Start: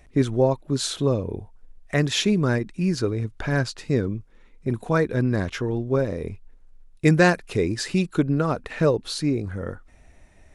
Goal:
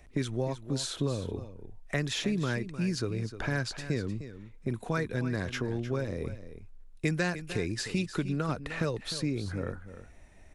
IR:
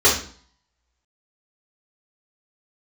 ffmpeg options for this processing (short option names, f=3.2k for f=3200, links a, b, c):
-filter_complex "[0:a]acrossover=split=180|1600[a][b][c];[a]acompressor=threshold=-32dB:ratio=4[d];[b]acompressor=threshold=-30dB:ratio=4[e];[c]acompressor=threshold=-31dB:ratio=4[f];[d][e][f]amix=inputs=3:normalize=0,aecho=1:1:305:0.237,volume=-2.5dB"